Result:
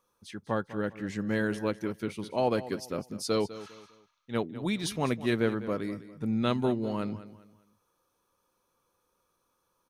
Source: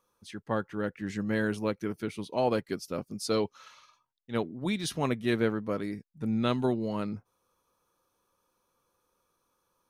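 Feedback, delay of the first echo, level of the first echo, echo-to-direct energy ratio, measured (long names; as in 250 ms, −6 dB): 33%, 201 ms, −15.0 dB, −14.5 dB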